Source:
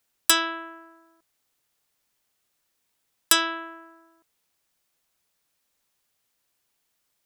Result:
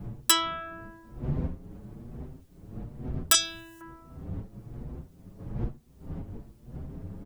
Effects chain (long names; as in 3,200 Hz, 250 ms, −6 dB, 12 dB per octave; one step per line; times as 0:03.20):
wind on the microphone 170 Hz −38 dBFS
0:03.34–0:03.81: drawn EQ curve 110 Hz 0 dB, 1,300 Hz −17 dB, 6,700 Hz +15 dB
in parallel at −0.5 dB: downward compressor, threshold −41 dBFS, peak gain reduction 25 dB
on the sum: barber-pole flanger 6.8 ms +1.1 Hz